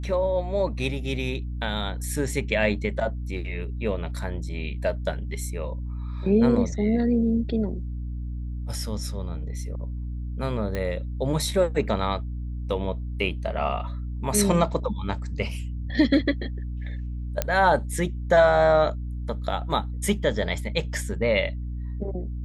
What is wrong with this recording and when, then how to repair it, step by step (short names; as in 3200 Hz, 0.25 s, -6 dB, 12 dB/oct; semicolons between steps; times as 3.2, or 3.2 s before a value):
hum 60 Hz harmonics 5 -31 dBFS
10.75 pop -16 dBFS
17.42 pop -8 dBFS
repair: de-click; de-hum 60 Hz, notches 5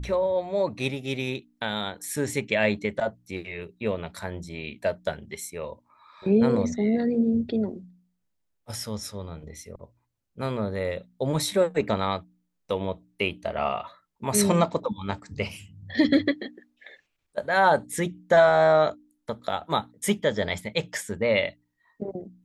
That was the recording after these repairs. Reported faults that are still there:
none